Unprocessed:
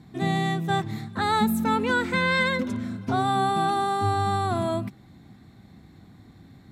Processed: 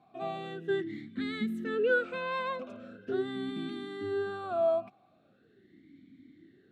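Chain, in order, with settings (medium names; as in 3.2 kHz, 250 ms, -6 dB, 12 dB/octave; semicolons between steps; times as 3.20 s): talking filter a-i 0.41 Hz; trim +4.5 dB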